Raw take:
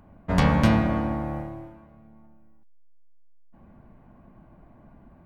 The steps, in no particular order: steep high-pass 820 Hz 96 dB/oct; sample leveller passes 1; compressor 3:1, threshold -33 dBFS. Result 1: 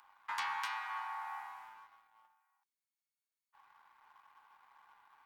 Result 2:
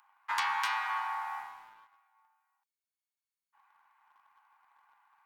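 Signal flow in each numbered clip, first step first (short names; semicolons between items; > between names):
compressor > steep high-pass > sample leveller; steep high-pass > compressor > sample leveller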